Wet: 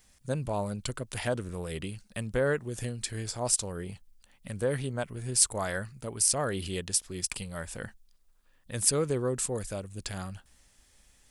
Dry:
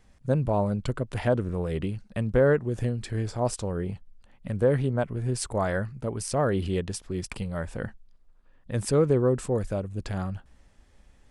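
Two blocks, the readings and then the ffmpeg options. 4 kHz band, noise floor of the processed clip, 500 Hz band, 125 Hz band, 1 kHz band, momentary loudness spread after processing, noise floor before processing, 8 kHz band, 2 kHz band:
+6.0 dB, −64 dBFS, −7.0 dB, −8.0 dB, −5.0 dB, 15 LU, −59 dBFS, +11.0 dB, −1.5 dB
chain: -af "crystalizer=i=7.5:c=0,volume=-8dB"

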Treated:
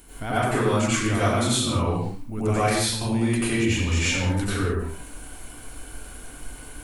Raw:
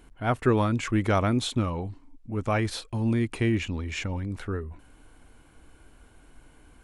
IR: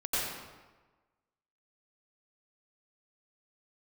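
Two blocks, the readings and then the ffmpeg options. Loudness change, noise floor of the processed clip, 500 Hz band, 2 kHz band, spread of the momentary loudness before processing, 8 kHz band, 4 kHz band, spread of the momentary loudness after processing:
+4.0 dB, −42 dBFS, +3.5 dB, +6.5 dB, 11 LU, +14.0 dB, +8.5 dB, 19 LU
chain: -filter_complex "[0:a]aemphasis=mode=production:type=75fm,acompressor=threshold=-33dB:ratio=4[link_01];[1:a]atrim=start_sample=2205,afade=type=out:start_time=0.36:duration=0.01,atrim=end_sample=16317[link_02];[link_01][link_02]afir=irnorm=-1:irlink=0,volume=5dB"

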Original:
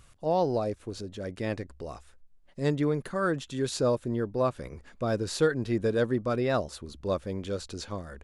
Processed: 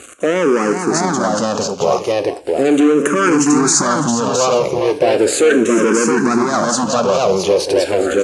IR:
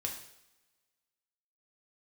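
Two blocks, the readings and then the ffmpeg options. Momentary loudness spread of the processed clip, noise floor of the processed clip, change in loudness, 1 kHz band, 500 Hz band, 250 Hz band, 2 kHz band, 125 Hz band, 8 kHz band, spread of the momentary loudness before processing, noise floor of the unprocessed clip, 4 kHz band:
5 LU, −28 dBFS, +15.0 dB, +17.0 dB, +15.0 dB, +16.5 dB, +17.0 dB, +5.5 dB, +25.5 dB, 12 LU, −57 dBFS, +17.0 dB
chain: -filter_complex "[0:a]aeval=exprs='if(lt(val(0),0),0.447*val(0),val(0))':channel_layout=same,equalizer=frequency=3800:width=1.2:gain=-10,acontrast=57,volume=25dB,asoftclip=hard,volume=-25dB,acrusher=bits=8:mix=0:aa=0.5,highpass=320,equalizer=frequency=640:width_type=q:width=4:gain=-5,equalizer=frequency=1900:width_type=q:width=4:gain=-8,equalizer=frequency=3500:width_type=q:width=4:gain=-4,equalizer=frequency=6500:width_type=q:width=4:gain=8,lowpass=frequency=9000:width=0.5412,lowpass=frequency=9000:width=1.3066,aecho=1:1:408|670:0.251|0.596,asplit=2[link_01][link_02];[1:a]atrim=start_sample=2205,asetrate=66150,aresample=44100[link_03];[link_02][link_03]afir=irnorm=-1:irlink=0,volume=-3dB[link_04];[link_01][link_04]amix=inputs=2:normalize=0,alimiter=level_in=24.5dB:limit=-1dB:release=50:level=0:latency=1,asplit=2[link_05][link_06];[link_06]afreqshift=-0.37[link_07];[link_05][link_07]amix=inputs=2:normalize=1,volume=-1dB"

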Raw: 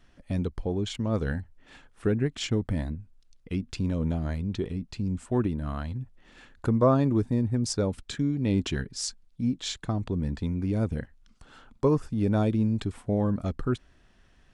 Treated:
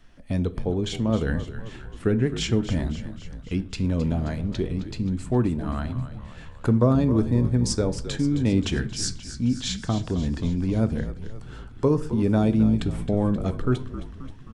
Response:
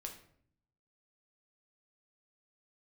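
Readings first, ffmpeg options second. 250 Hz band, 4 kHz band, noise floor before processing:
+4.5 dB, +4.0 dB, −60 dBFS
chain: -filter_complex "[0:a]acrossover=split=430|3000[link_01][link_02][link_03];[link_02]acompressor=threshold=-29dB:ratio=6[link_04];[link_01][link_04][link_03]amix=inputs=3:normalize=0,asplit=8[link_05][link_06][link_07][link_08][link_09][link_10][link_11][link_12];[link_06]adelay=265,afreqshift=-53,volume=-12dB[link_13];[link_07]adelay=530,afreqshift=-106,volume=-16.3dB[link_14];[link_08]adelay=795,afreqshift=-159,volume=-20.6dB[link_15];[link_09]adelay=1060,afreqshift=-212,volume=-24.9dB[link_16];[link_10]adelay=1325,afreqshift=-265,volume=-29.2dB[link_17];[link_11]adelay=1590,afreqshift=-318,volume=-33.5dB[link_18];[link_12]adelay=1855,afreqshift=-371,volume=-37.8dB[link_19];[link_05][link_13][link_14][link_15][link_16][link_17][link_18][link_19]amix=inputs=8:normalize=0,asplit=2[link_20][link_21];[1:a]atrim=start_sample=2205,asetrate=61740,aresample=44100[link_22];[link_21][link_22]afir=irnorm=-1:irlink=0,volume=2dB[link_23];[link_20][link_23]amix=inputs=2:normalize=0"

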